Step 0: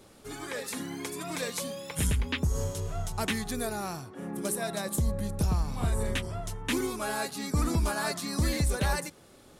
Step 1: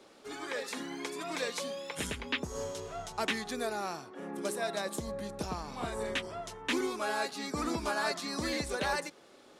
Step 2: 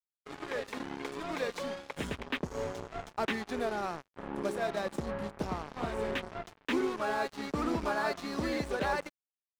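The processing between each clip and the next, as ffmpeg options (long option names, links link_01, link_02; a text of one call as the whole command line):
ffmpeg -i in.wav -filter_complex "[0:a]acrossover=split=240 6800:gain=0.112 1 0.2[link_01][link_02][link_03];[link_01][link_02][link_03]amix=inputs=3:normalize=0" out.wav
ffmpeg -i in.wav -af "acrusher=bits=5:mix=0:aa=0.5,lowpass=frequency=1500:poles=1,volume=2.5dB" out.wav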